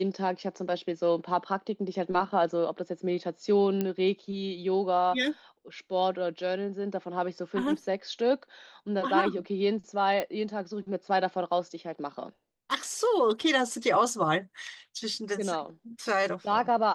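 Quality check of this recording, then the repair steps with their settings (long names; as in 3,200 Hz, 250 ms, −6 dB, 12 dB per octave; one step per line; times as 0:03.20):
0:03.81: click −16 dBFS
0:10.20: click −16 dBFS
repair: click removal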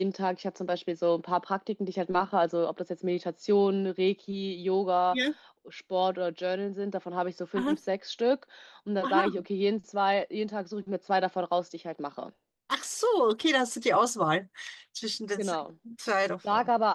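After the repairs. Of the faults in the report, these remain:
none of them is left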